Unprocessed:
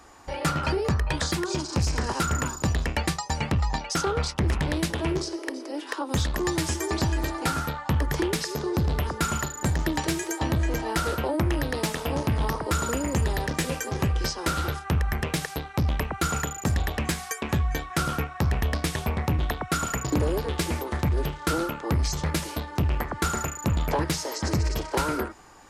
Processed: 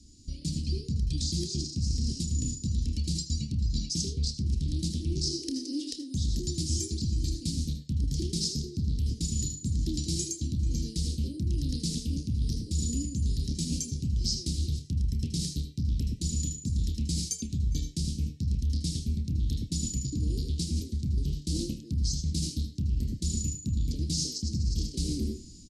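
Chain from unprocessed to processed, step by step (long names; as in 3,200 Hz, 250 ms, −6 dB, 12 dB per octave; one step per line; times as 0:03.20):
elliptic band-stop filter 240–4,500 Hz, stop band 70 dB
high-shelf EQ 5,800 Hz −7 dB
on a send at −7 dB: convolution reverb RT60 0.35 s, pre-delay 73 ms
on the sum: automatic gain control gain up to 7 dB
low-pass filter 9,500 Hz 24 dB per octave
double-tracking delay 29 ms −13 dB
reversed playback
downward compressor 6 to 1, threshold −29 dBFS, peak gain reduction 15 dB
reversed playback
dynamic equaliser 160 Hz, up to −4 dB, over −46 dBFS, Q 1.4
level +3.5 dB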